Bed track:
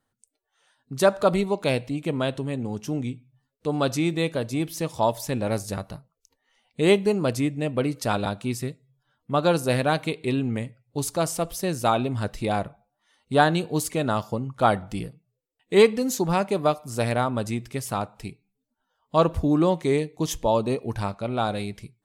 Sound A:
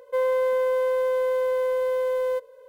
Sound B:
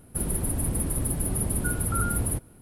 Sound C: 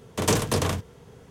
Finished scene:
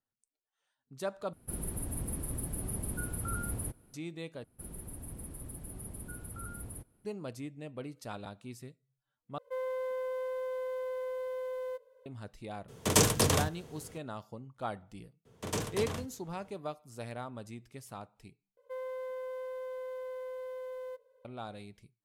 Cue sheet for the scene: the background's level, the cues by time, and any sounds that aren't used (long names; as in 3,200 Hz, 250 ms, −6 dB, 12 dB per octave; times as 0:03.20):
bed track −17.5 dB
0:01.33: overwrite with B −10 dB
0:04.44: overwrite with B −17.5 dB
0:09.38: overwrite with A −13 dB
0:12.68: mix in C −3.5 dB + high-shelf EQ 4,600 Hz +7 dB
0:15.25: mix in C −12.5 dB
0:18.57: overwrite with A −17 dB